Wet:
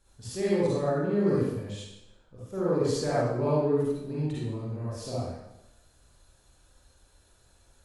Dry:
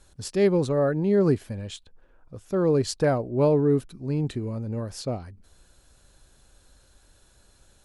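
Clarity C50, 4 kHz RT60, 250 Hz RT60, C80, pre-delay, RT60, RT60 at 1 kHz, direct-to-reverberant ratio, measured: -5.0 dB, 0.80 s, 0.90 s, 0.5 dB, 39 ms, 0.95 s, 0.95 s, -9.0 dB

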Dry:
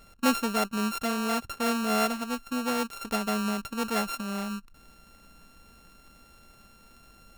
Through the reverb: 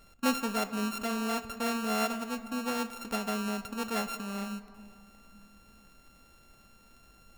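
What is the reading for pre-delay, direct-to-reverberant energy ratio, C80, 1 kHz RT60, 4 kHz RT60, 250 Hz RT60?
6 ms, 11.0 dB, 13.5 dB, 2.6 s, 1.4 s, 3.2 s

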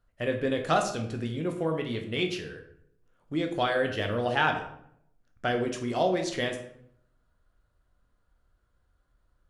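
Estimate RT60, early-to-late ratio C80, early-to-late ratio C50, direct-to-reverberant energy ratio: 0.70 s, 11.0 dB, 8.5 dB, 3.5 dB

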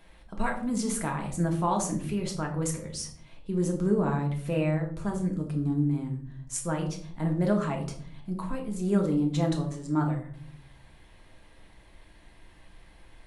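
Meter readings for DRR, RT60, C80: 1.0 dB, 0.50 s, 13.0 dB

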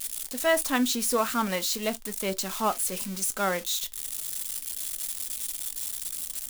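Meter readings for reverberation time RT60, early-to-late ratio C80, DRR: not exponential, 60.0 dB, 11.0 dB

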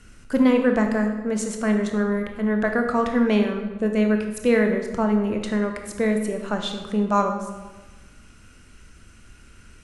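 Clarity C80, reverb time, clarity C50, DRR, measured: 8.0 dB, 1.2 s, 6.0 dB, 4.0 dB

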